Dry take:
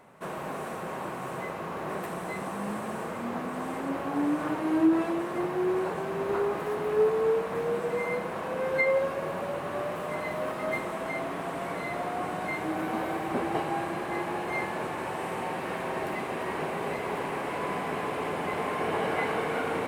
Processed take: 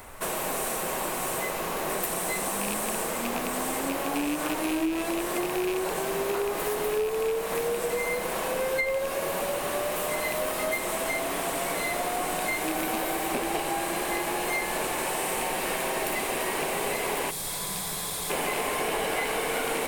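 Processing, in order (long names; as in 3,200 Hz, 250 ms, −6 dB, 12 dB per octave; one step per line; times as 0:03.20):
loose part that buzzes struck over −34 dBFS, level −30 dBFS
RIAA equalisation recording
gain on a spectral selection 0:17.30–0:18.30, 200–3,200 Hz −15 dB
dynamic equaliser 1,300 Hz, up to −6 dB, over −46 dBFS, Q 0.93
downward compressor 6 to 1, threshold −34 dBFS, peak gain reduction 11 dB
background noise brown −57 dBFS
level +9 dB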